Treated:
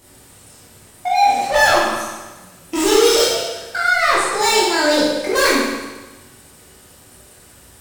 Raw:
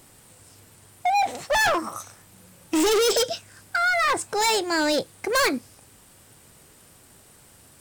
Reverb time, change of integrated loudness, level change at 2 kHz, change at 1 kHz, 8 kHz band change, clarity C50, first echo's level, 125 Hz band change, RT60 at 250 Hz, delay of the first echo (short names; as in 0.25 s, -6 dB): 1.2 s, +7.0 dB, +7.0 dB, +7.5 dB, +7.0 dB, -0.5 dB, none, +6.0 dB, 1.2 s, none